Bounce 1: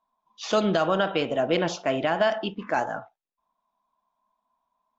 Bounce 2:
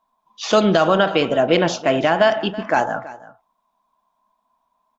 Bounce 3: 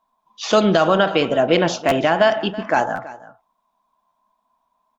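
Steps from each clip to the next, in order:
echo 0.328 s -18 dB; gain +7.5 dB
stuck buffer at 1.88/2.95/4.08, samples 512, times 2

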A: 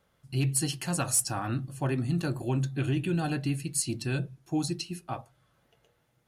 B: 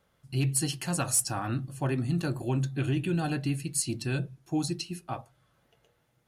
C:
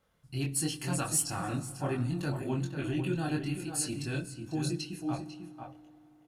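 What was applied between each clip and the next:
nothing audible
outdoor echo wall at 85 m, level -7 dB; chorus voices 4, 0.76 Hz, delay 23 ms, depth 3.3 ms; FDN reverb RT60 3.4 s, high-frequency decay 0.55×, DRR 17 dB

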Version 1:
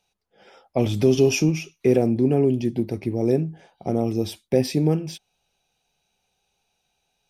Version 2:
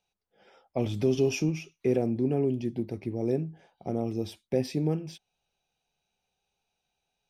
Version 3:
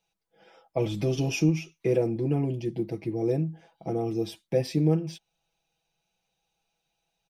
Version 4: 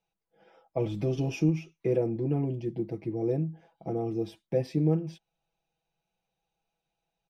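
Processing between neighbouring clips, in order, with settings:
high shelf 6700 Hz -6.5 dB; gain -7.5 dB
comb 6.1 ms, depth 89%
high shelf 2600 Hz -11 dB; gain -2 dB

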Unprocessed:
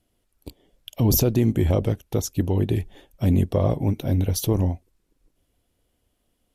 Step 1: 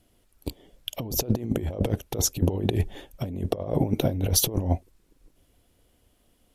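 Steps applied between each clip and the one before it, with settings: dynamic EQ 550 Hz, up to +7 dB, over -37 dBFS, Q 0.88; negative-ratio compressor -24 dBFS, ratio -0.5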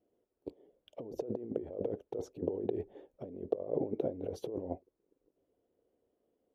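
band-pass 440 Hz, Q 2.5; gain -3 dB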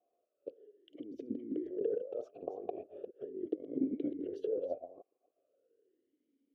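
reverse delay 0.239 s, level -9.5 dB; vowel sweep a-i 0.39 Hz; gain +9 dB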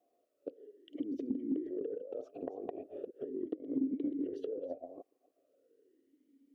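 compressor 6:1, threshold -41 dBFS, peak gain reduction 13 dB; small resonant body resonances 270/1900 Hz, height 9 dB; gain +3.5 dB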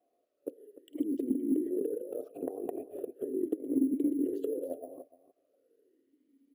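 careless resampling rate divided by 4×, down filtered, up hold; dynamic EQ 340 Hz, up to +7 dB, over -48 dBFS, Q 1.3; echo 0.297 s -15.5 dB

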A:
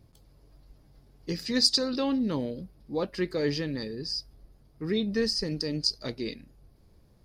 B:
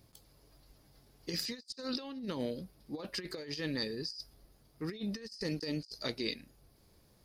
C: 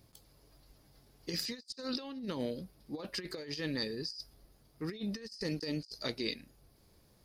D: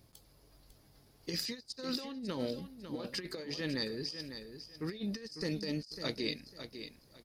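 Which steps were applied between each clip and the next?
tilt +2 dB/oct; negative-ratio compressor -34 dBFS, ratio -0.5; gain -5 dB
nothing audible
feedback echo 0.55 s, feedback 24%, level -10 dB

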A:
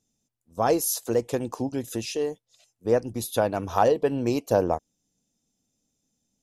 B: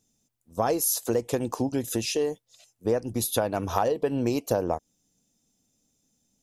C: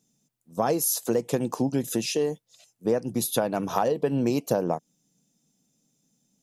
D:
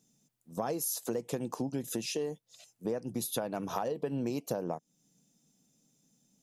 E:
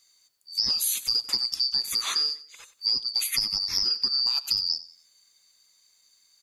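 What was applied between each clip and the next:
high shelf 9600 Hz +5 dB; compressor 5:1, threshold -25 dBFS, peak gain reduction 9.5 dB; gain +3.5 dB
resonant low shelf 110 Hz -10 dB, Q 3
compressor 2:1, threshold -38 dBFS, peak gain reduction 11 dB
four-band scrambler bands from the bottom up 2341; feedback echo 93 ms, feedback 35%, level -17 dB; gain +8 dB

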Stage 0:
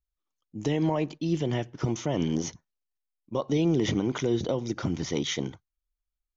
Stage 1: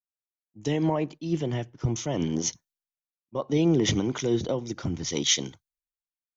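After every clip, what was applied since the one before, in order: high shelf 4900 Hz +6.5 dB; three-band expander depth 100%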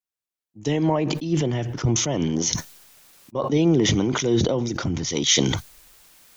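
sustainer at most 32 dB/s; gain +3.5 dB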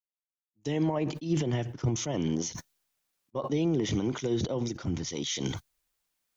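limiter -17.5 dBFS, peak gain reduction 11.5 dB; upward expander 2.5:1, over -41 dBFS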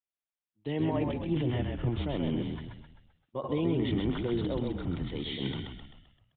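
frequency-shifting echo 0.13 s, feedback 48%, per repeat -41 Hz, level -4 dB; downsampling 8000 Hz; gain -2.5 dB

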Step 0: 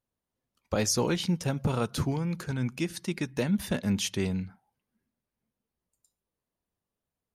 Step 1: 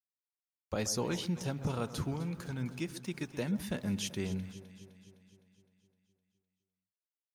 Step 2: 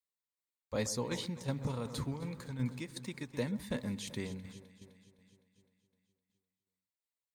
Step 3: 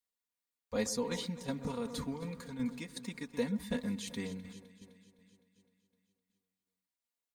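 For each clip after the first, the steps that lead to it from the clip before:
sample gate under -50 dBFS; on a send: echo with dull and thin repeats by turns 0.128 s, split 1500 Hz, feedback 76%, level -12.5 dB; on the sum: gain -7 dB
tremolo saw down 2.7 Hz, depth 55%; ripple EQ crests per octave 1, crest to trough 7 dB
comb 4.2 ms, depth 75%; gain -1.5 dB

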